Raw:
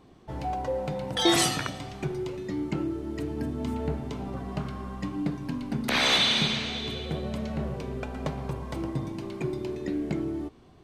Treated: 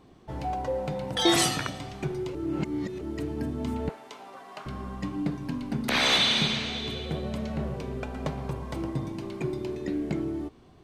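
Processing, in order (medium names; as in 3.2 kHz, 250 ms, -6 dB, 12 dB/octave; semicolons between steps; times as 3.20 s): 2.35–3.01 s: reverse; 3.89–4.66 s: high-pass 740 Hz 12 dB/octave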